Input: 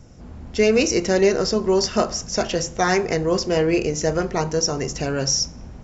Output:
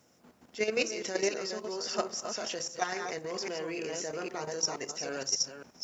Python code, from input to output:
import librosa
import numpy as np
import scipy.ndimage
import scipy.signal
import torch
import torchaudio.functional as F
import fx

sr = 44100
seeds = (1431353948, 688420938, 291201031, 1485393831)

y = fx.reverse_delay(x, sr, ms=268, wet_db=-5.0)
y = scipy.signal.sosfilt(scipy.signal.butter(2, 200.0, 'highpass', fs=sr, output='sos'), y)
y = fx.low_shelf(y, sr, hz=470.0, db=-9.5)
y = fx.level_steps(y, sr, step_db=10)
y = fx.quant_dither(y, sr, seeds[0], bits=12, dither='triangular')
y = y * librosa.db_to_amplitude(-6.0)